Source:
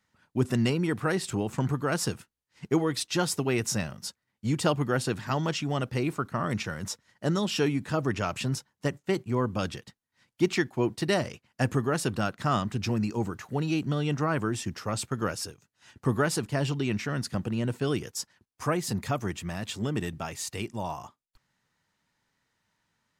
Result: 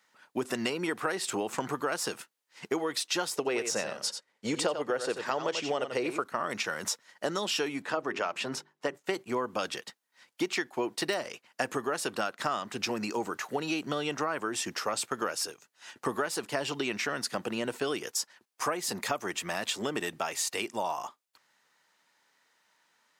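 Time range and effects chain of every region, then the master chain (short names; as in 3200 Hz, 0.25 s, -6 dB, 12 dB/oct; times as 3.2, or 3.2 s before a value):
3.36–6.24 LPF 9300 Hz + bell 490 Hz +8 dB 0.64 oct + echo 89 ms -9.5 dB
7.82–8.95 LPF 2500 Hz 6 dB/oct + low shelf 92 Hz -11.5 dB + notches 50/100/150/200/250/300/350/400 Hz
whole clip: de-esser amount 55%; HPF 440 Hz 12 dB/oct; compressor 6:1, threshold -35 dBFS; gain +7.5 dB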